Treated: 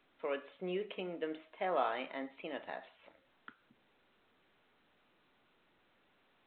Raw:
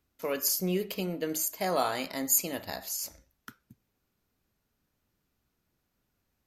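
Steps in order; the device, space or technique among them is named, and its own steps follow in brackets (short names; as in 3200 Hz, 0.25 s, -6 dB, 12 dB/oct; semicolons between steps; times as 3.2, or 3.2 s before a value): telephone (BPF 330–3200 Hz; gain -4.5 dB; A-law 64 kbps 8000 Hz)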